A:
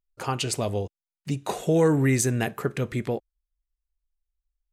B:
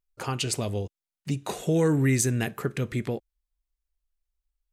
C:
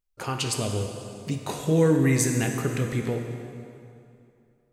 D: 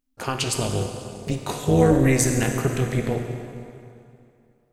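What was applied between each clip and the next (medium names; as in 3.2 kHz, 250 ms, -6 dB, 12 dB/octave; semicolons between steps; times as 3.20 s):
dynamic bell 760 Hz, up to -6 dB, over -36 dBFS, Q 0.79
plate-style reverb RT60 2.6 s, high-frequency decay 0.8×, DRR 3 dB
AM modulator 260 Hz, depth 65%; trim +6.5 dB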